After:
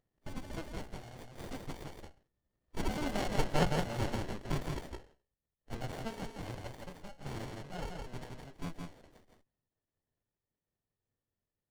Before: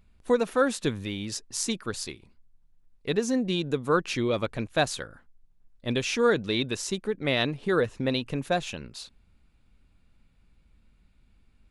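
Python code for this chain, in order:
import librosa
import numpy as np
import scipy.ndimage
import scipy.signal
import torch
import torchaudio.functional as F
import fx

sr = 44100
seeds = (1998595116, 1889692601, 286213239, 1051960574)

p1 = fx.doppler_pass(x, sr, speed_mps=35, closest_m=11.0, pass_at_s=3.35)
p2 = fx.over_compress(p1, sr, threshold_db=-43.0, ratio=-1.0)
p3 = p1 + F.gain(torch.from_numpy(p2), -2.0).numpy()
p4 = fx.graphic_eq_10(p3, sr, hz=(125, 250, 500, 1000, 2000, 4000, 8000), db=(-7, -9, 6, -10, -6, -3, -9))
p5 = fx.pitch_keep_formants(p4, sr, semitones=1.0)
p6 = scipy.signal.sosfilt(scipy.signal.butter(2, 58.0, 'highpass', fs=sr, output='sos'), p5)
p7 = fx.low_shelf(p6, sr, hz=140.0, db=-7.5)
p8 = fx.hum_notches(p7, sr, base_hz=60, count=9)
p9 = p8 * np.sin(2.0 * np.pi * 1800.0 * np.arange(len(p8)) / sr)
p10 = p9 + 10.0 ** (-3.5 / 20.0) * np.pad(p9, (int(166 * sr / 1000.0), 0))[:len(p9)]
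p11 = fx.running_max(p10, sr, window=33)
y = F.gain(torch.from_numpy(p11), 8.0).numpy()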